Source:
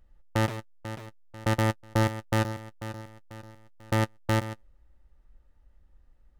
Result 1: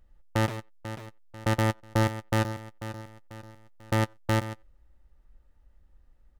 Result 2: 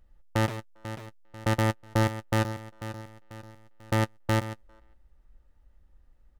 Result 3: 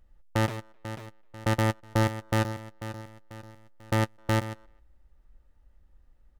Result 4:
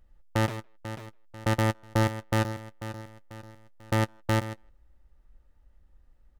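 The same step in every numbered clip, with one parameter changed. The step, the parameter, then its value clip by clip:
speakerphone echo, time: 90, 400, 260, 160 ms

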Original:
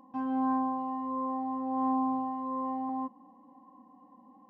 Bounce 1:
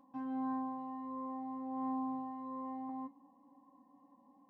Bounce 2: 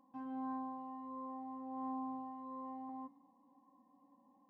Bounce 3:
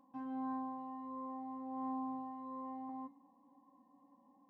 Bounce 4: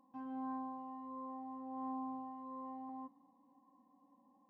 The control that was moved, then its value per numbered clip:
resonator, decay: 0.19, 1, 0.44, 2.2 s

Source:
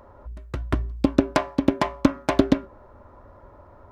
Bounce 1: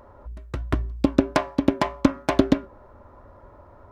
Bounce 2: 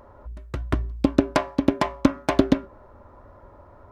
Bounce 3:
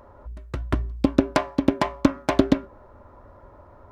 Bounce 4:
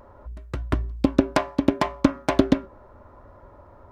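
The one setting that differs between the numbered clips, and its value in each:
vibrato, rate: 3.2, 1.9, 6.5, 0.72 Hz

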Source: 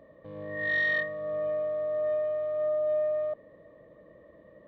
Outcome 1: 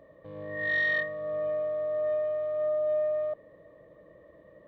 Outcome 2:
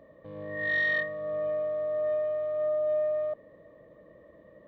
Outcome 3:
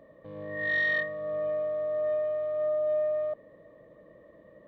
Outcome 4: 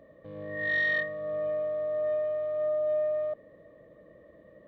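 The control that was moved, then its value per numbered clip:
bell, frequency: 230, 9000, 75, 960 Hz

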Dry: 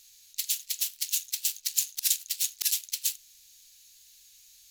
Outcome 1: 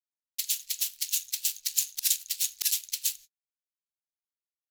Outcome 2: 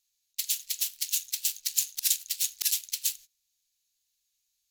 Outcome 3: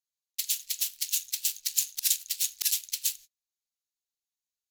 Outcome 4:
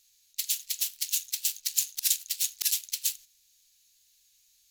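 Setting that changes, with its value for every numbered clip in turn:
gate, range: -53, -22, -38, -9 dB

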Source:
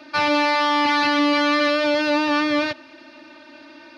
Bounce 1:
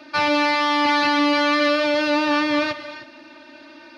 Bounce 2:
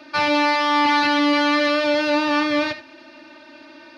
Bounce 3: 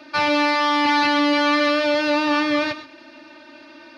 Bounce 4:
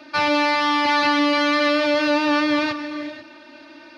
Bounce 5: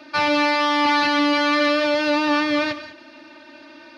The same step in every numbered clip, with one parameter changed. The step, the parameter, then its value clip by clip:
non-linear reverb, gate: 0.34, 0.1, 0.15, 0.52, 0.22 s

